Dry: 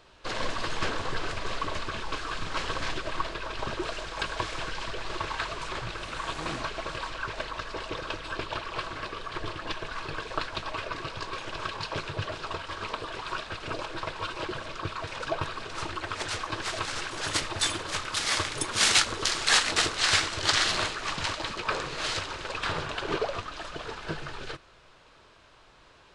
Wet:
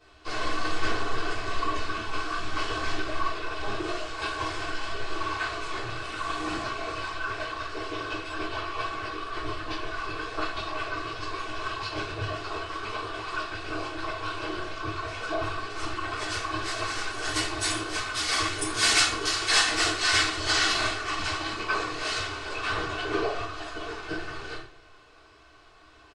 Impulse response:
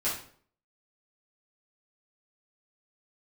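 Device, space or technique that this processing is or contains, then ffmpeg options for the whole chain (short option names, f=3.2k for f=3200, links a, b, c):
microphone above a desk: -filter_complex "[0:a]aecho=1:1:2.7:0.54[a];[1:a]atrim=start_sample=2205[b];[a][b]afir=irnorm=-1:irlink=0,volume=-7dB"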